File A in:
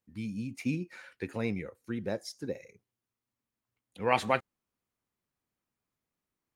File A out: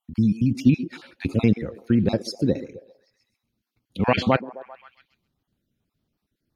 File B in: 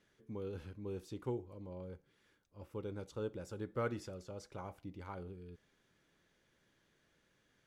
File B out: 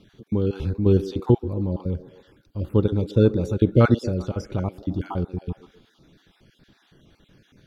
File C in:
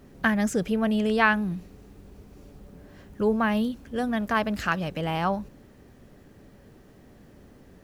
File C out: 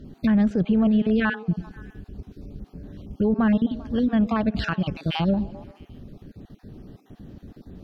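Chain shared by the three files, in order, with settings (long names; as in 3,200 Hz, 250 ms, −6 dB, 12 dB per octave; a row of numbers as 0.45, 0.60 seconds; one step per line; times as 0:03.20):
time-frequency cells dropped at random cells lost 31%
treble cut that deepens with the level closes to 2,100 Hz, closed at −23.5 dBFS
octave-band graphic EQ 500/1,000/2,000/4,000/8,000 Hz −7/−8/−10/+4/−11 dB
in parallel at +2 dB: output level in coarse steps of 15 dB
on the sum: brickwall limiter −22 dBFS
echo through a band-pass that steps 131 ms, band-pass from 340 Hz, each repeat 0.7 octaves, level −12 dB
one half of a high-frequency compander decoder only
loudness normalisation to −23 LKFS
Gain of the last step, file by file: +15.5, +23.0, +8.0 decibels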